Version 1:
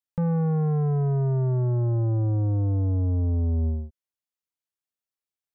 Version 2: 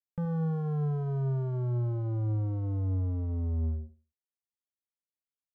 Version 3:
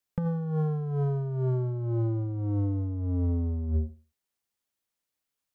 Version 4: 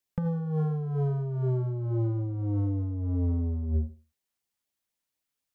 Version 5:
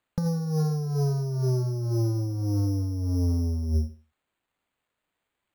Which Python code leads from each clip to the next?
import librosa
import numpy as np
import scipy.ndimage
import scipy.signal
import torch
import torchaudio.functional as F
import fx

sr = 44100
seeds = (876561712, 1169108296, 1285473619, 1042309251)

y1 = fx.wiener(x, sr, points=41)
y1 = fx.echo_feedback(y1, sr, ms=74, feedback_pct=23, wet_db=-14.0)
y1 = y1 * librosa.db_to_amplitude(-7.0)
y2 = fx.dynamic_eq(y1, sr, hz=310.0, q=1.5, threshold_db=-48.0, ratio=4.0, max_db=6)
y2 = fx.over_compress(y2, sr, threshold_db=-32.0, ratio=-0.5)
y2 = y2 * librosa.db_to_amplitude(5.5)
y3 = fx.filter_lfo_notch(y2, sr, shape='sine', hz=4.1, low_hz=370.0, high_hz=1500.0, q=2.9)
y4 = np.repeat(y3[::8], 8)[:len(y3)]
y4 = y4 * librosa.db_to_amplitude(2.5)